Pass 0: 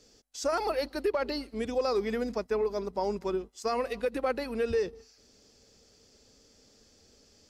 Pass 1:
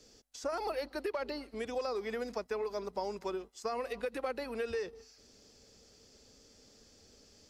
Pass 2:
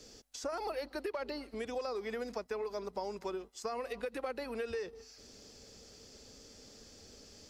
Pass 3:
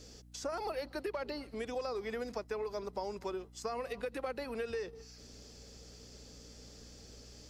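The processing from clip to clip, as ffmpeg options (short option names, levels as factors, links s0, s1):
-filter_complex "[0:a]acrossover=split=440|1000|2100[s0][s1][s2][s3];[s0]acompressor=threshold=0.00501:ratio=4[s4];[s1]acompressor=threshold=0.0141:ratio=4[s5];[s2]acompressor=threshold=0.00501:ratio=4[s6];[s3]acompressor=threshold=0.00355:ratio=4[s7];[s4][s5][s6][s7]amix=inputs=4:normalize=0"
-af "acompressor=threshold=0.002:ratio=1.5,volume=1.88"
-af "aeval=exprs='val(0)+0.00158*(sin(2*PI*60*n/s)+sin(2*PI*2*60*n/s)/2+sin(2*PI*3*60*n/s)/3+sin(2*PI*4*60*n/s)/4+sin(2*PI*5*60*n/s)/5)':c=same"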